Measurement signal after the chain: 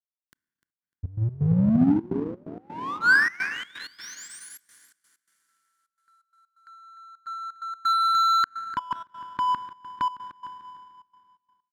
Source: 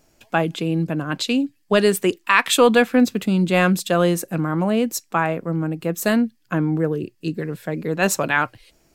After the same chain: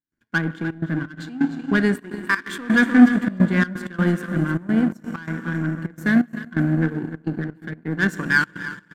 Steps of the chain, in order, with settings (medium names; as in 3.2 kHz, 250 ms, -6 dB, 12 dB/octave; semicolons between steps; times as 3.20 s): FFT filter 280 Hz 0 dB, 680 Hz -26 dB, 1.5 kHz +4 dB, 2.6 kHz -15 dB; on a send: feedback delay 300 ms, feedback 29%, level -11.5 dB; on the sum: Schroeder reverb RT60 3.6 s, combs from 25 ms, DRR 9 dB; in parallel at -4 dB: overload inside the chain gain 16.5 dB; on the sum: trance gate ".xxxxx.xx.x" 128 bpm -12 dB; treble shelf 6.8 kHz -5 dB; comb of notches 1.3 kHz; power-law waveshaper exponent 1.4; trim +3.5 dB